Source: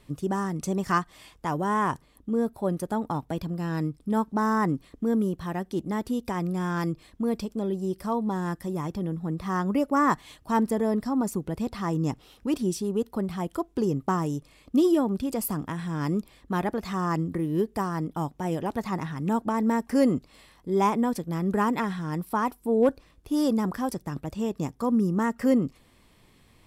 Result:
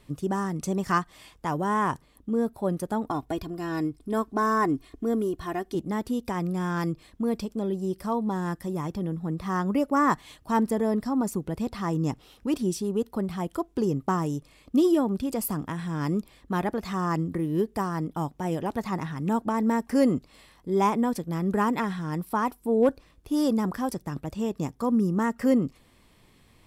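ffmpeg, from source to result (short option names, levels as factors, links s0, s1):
-filter_complex "[0:a]asettb=1/sr,asplit=3[s0][s1][s2];[s0]atrim=end=3.074[s3];[s1]atrim=start=3.07:end=5.75,asetpts=PTS-STARTPTS,afade=t=in:d=0.004:c=qsin,afade=t=out:st=2.676:d=0.004:c=qsin,aecho=1:1:2.8:0.65,atrim=end_sample=118188[s4];[s2]atrim=start=5.746[s5];[s3][s4]acrossfade=d=0.004:c1=hsin:c2=qsin[s6];[s6][s5]acrossfade=d=0.004:c1=qsin:c2=hsin"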